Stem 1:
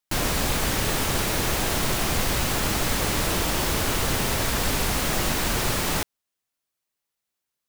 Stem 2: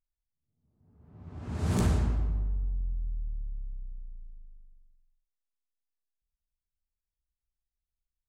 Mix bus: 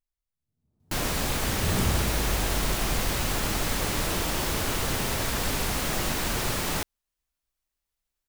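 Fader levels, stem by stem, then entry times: -3.5 dB, -1.5 dB; 0.80 s, 0.00 s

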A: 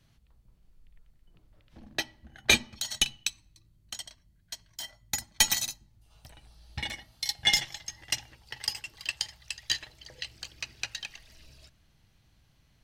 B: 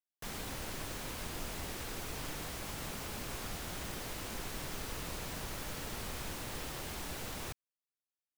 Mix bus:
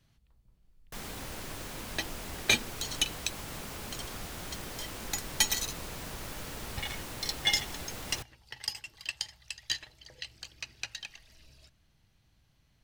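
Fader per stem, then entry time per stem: -3.5 dB, +0.5 dB; 0.00 s, 0.70 s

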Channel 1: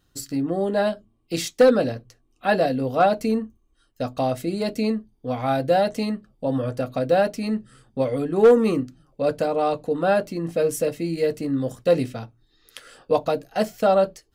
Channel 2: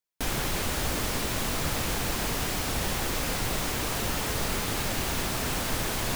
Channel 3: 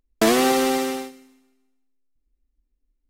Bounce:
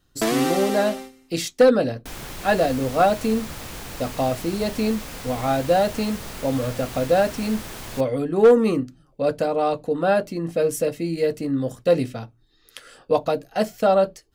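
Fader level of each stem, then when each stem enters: +0.5 dB, -6.5 dB, -5.0 dB; 0.00 s, 1.85 s, 0.00 s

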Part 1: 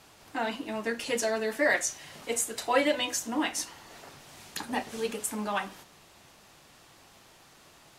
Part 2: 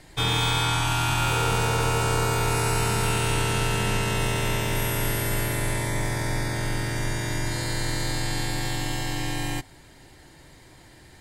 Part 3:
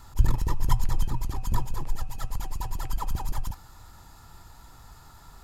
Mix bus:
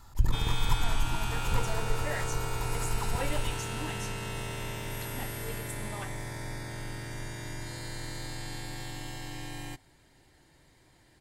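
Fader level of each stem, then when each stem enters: -12.0 dB, -11.5 dB, -4.5 dB; 0.45 s, 0.15 s, 0.00 s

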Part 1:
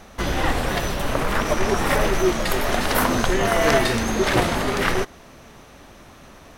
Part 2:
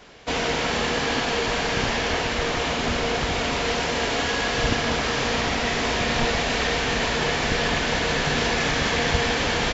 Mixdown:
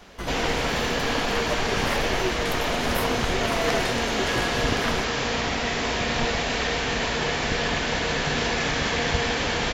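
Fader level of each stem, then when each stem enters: -8.5 dB, -2.0 dB; 0.00 s, 0.00 s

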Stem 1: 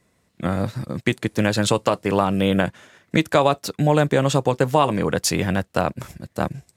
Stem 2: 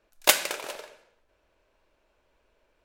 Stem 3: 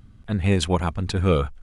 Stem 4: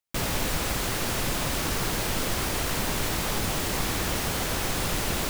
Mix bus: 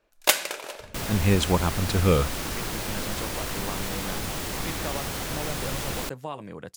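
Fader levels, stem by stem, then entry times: -18.0 dB, -0.5 dB, -1.0 dB, -3.5 dB; 1.50 s, 0.00 s, 0.80 s, 0.80 s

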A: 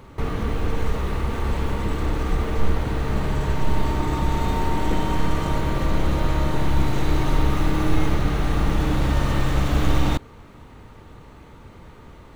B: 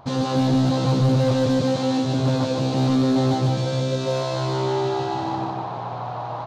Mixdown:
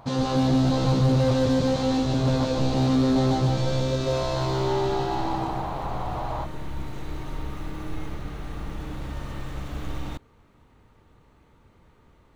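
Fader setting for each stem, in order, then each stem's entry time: -13.0 dB, -2.0 dB; 0.00 s, 0.00 s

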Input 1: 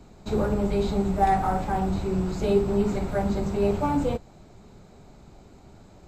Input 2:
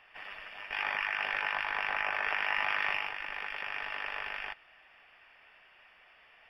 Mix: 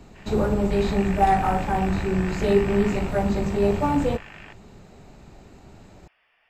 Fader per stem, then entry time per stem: +2.5 dB, -6.0 dB; 0.00 s, 0.00 s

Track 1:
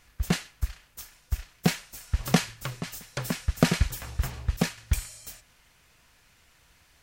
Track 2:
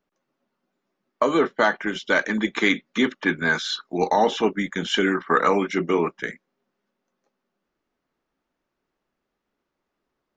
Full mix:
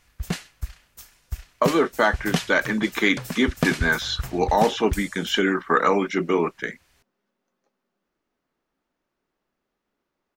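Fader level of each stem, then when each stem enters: -2.0 dB, 0.0 dB; 0.00 s, 0.40 s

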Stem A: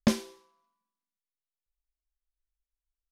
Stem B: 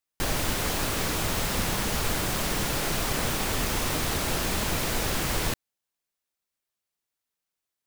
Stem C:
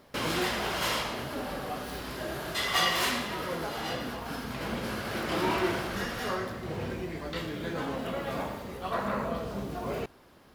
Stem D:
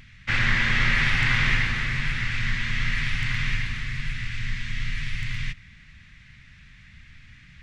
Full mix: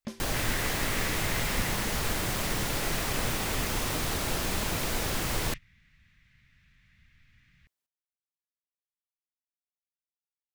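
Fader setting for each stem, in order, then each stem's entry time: -15.0 dB, -3.0 dB, mute, -13.5 dB; 0.00 s, 0.00 s, mute, 0.05 s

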